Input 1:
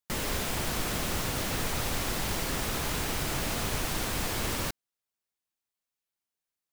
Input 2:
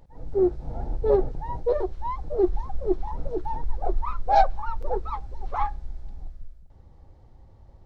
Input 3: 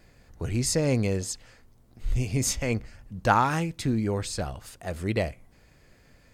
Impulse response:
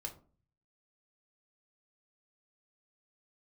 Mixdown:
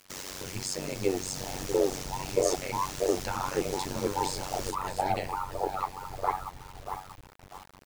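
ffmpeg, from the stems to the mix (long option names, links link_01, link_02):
-filter_complex "[0:a]equalizer=frequency=6000:width=1.3:gain=9,volume=-4dB,asplit=2[link_01][link_02];[link_02]volume=-8dB[link_03];[1:a]alimiter=limit=-17dB:level=0:latency=1:release=107,aecho=1:1:6.8:0.58,adelay=700,volume=2dB,asplit=3[link_04][link_05][link_06];[link_05]volume=-23dB[link_07];[link_06]volume=-7.5dB[link_08];[2:a]equalizer=frequency=4900:width=0.42:gain=7,acompressor=threshold=-31dB:ratio=2,volume=2dB,asplit=3[link_09][link_10][link_11];[link_10]volume=-4.5dB[link_12];[link_11]volume=-15dB[link_13];[link_01][link_09]amix=inputs=2:normalize=0,alimiter=level_in=4.5dB:limit=-24dB:level=0:latency=1:release=174,volume=-4.5dB,volume=0dB[link_14];[3:a]atrim=start_sample=2205[link_15];[link_03][link_07][link_12]amix=inputs=3:normalize=0[link_16];[link_16][link_15]afir=irnorm=-1:irlink=0[link_17];[link_08][link_13]amix=inputs=2:normalize=0,aecho=0:1:637|1274|1911|2548|3185:1|0.32|0.102|0.0328|0.0105[link_18];[link_04][link_14][link_17][link_18]amix=inputs=4:normalize=0,highpass=frequency=170:poles=1,tremolo=f=94:d=0.947,acrusher=bits=7:mix=0:aa=0.000001"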